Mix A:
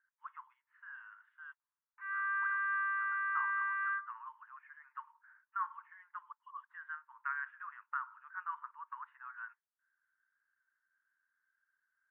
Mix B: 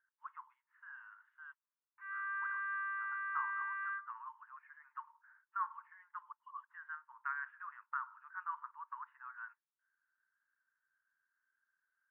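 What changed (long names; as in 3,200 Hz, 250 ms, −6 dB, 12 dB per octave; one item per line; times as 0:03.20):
speech: add spectral tilt −3.5 dB per octave
background −5.0 dB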